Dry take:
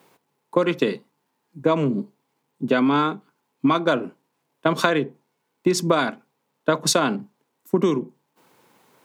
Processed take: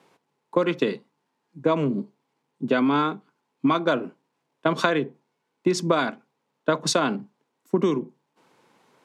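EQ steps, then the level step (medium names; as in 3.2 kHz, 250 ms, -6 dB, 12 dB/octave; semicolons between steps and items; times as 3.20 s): high-pass 100 Hz; Bessel low-pass 6.7 kHz, order 2; -2.0 dB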